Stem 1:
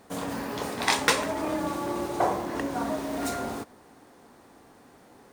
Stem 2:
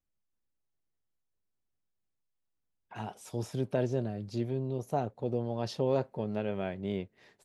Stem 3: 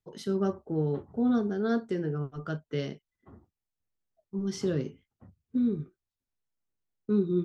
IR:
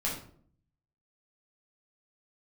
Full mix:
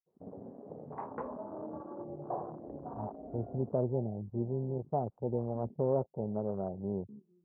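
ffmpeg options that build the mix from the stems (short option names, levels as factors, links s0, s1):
-filter_complex "[0:a]adelay=100,volume=0.237,asplit=2[s0][s1];[s1]volume=0.133[s2];[1:a]afwtdn=0.00562,volume=0.891[s3];[2:a]acompressor=threshold=0.0224:ratio=6,volume=0.15,asplit=2[s4][s5];[s5]volume=0.178[s6];[3:a]atrim=start_sample=2205[s7];[s2][s6]amix=inputs=2:normalize=0[s8];[s8][s7]afir=irnorm=-1:irlink=0[s9];[s0][s3][s4][s9]amix=inputs=4:normalize=0,afwtdn=0.0141,lowpass=f=1000:w=0.5412,lowpass=f=1000:w=1.3066,equalizer=f=290:t=o:w=0.25:g=-4"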